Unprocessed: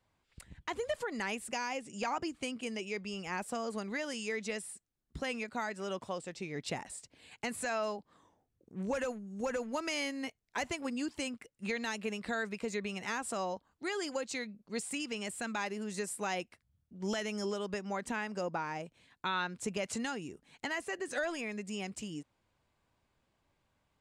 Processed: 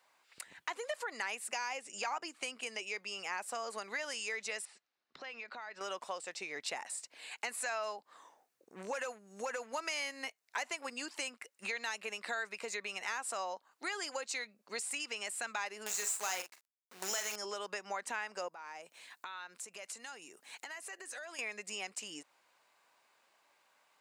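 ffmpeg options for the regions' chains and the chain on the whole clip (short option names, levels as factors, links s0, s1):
-filter_complex "[0:a]asettb=1/sr,asplit=3[s0][s1][s2];[s0]atrim=end=4.654[s3];[s1]atrim=start=4.65:end=5.81,asetpts=PTS-STARTPTS,afade=t=in:d=0.004:c=qsin,afade=t=out:st=1.156:d=0.004:c=qsin,lowpass=f=4800:w=0.5412,lowpass=f=4800:w=1.3066,acompressor=threshold=0.00501:ratio=12:attack=3.2:release=140:knee=1:detection=peak[s4];[s2]atrim=start=5.806[s5];[s3][s4]acrossfade=d=0.004:c1=hsin:c2=qsin[s6];[s6][s5]acrossfade=d=0.004:c1=qsin:c2=hsin,asettb=1/sr,asplit=3[s7][s8][s9];[s7]atrim=end=15.864[s10];[s8]atrim=start=15.86:end=17.36,asetpts=PTS-STARTPTS,afade=t=in:d=0.004:c=qsin,afade=t=out:st=1.496:d=0.004:c=qsin,lowpass=f=7200:t=q:w=5.3,acrusher=bits=7:dc=4:mix=0:aa=0.000001,asplit=2[s11][s12];[s12]adelay=43,volume=0.335[s13];[s11][s13]amix=inputs=2:normalize=0,atrim=end_sample=66150[s14];[s9]atrim=start=17.356[s15];[s10][s14]acrossfade=d=0.004:c1=hsin:c2=qsin[s16];[s16][s15]acrossfade=d=0.004:c1=qsin:c2=hsin,asettb=1/sr,asplit=3[s17][s18][s19];[s17]atrim=end=18.484[s20];[s18]atrim=start=18.48:end=21.39,asetpts=PTS-STARTPTS,afade=t=in:d=0.004:c=qsin,afade=t=out:st=2.906:d=0.004:c=qsin,highshelf=f=8000:g=9,acompressor=threshold=0.00251:ratio=4:attack=3.2:release=140:knee=1:detection=peak[s21];[s19]atrim=start=21.386[s22];[s20][s21]acrossfade=d=0.004:c1=hsin:c2=qsin[s23];[s23][s22]acrossfade=d=0.004:c1=qsin:c2=hsin,highpass=730,equalizer=f=3300:w=6.9:g=-4.5,acompressor=threshold=0.002:ratio=2,volume=3.35"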